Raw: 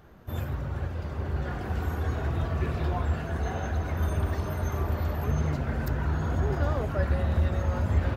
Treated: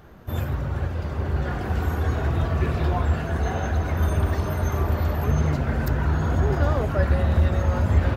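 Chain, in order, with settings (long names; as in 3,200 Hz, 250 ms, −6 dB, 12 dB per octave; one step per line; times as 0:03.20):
level +5.5 dB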